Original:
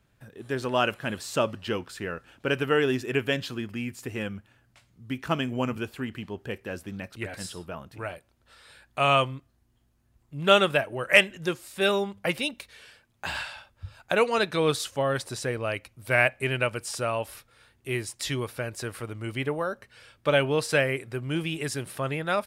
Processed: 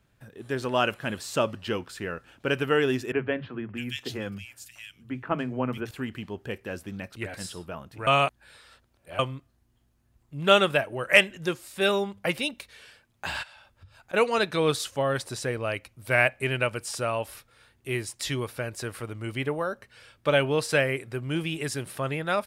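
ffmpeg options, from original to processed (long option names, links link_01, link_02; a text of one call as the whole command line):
ffmpeg -i in.wav -filter_complex "[0:a]asettb=1/sr,asplit=3[link_01][link_02][link_03];[link_01]atrim=end=3.124[link_04];[link_02]atrim=start=3.12:end=5.91,asetpts=PTS-STARTPTS,afade=type=in:duration=0.004:curve=qsin,afade=type=out:start_time=2.786:duration=0.004:curve=qsin,acrossover=split=160|2400[link_05][link_06][link_07];[link_05]adelay=40[link_08];[link_07]adelay=630[link_09];[link_08][link_06][link_09]amix=inputs=3:normalize=0,atrim=end_sample=123039[link_10];[link_03]atrim=start=5.906[link_11];[link_04][link_10]acrossfade=duration=0.004:curve1=hsin:curve2=qsin[link_12];[link_12][link_11]acrossfade=duration=0.004:curve1=qsin:curve2=hsin,asplit=3[link_13][link_14][link_15];[link_13]afade=type=out:start_time=13.42:duration=0.02[link_16];[link_14]acompressor=threshold=-49dB:ratio=4:attack=3.2:release=140:knee=1:detection=peak,afade=type=in:start_time=13.42:duration=0.02,afade=type=out:start_time=14.13:duration=0.02[link_17];[link_15]afade=type=in:start_time=14.13:duration=0.02[link_18];[link_16][link_17][link_18]amix=inputs=3:normalize=0,asplit=3[link_19][link_20][link_21];[link_19]atrim=end=8.072[link_22];[link_20]atrim=start=8.068:end=9.192,asetpts=PTS-STARTPTS,areverse[link_23];[link_21]atrim=start=9.188[link_24];[link_22][link_23]acrossfade=duration=0.004:curve1=hsin:curve2=hsin[link_25];[link_25][link_24]acrossfade=duration=0.004:curve1=hsin:curve2=hsin" out.wav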